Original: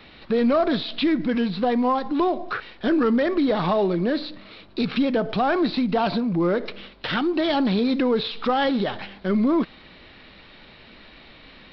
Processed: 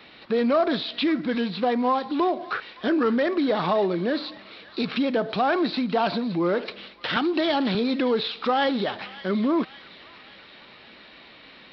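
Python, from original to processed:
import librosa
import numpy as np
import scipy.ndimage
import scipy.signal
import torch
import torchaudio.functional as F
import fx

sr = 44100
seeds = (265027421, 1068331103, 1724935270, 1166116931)

y = fx.highpass(x, sr, hz=260.0, slope=6)
y = fx.echo_wet_highpass(y, sr, ms=566, feedback_pct=54, hz=1600.0, wet_db=-13.5)
y = fx.band_squash(y, sr, depth_pct=70, at=(7.16, 7.75))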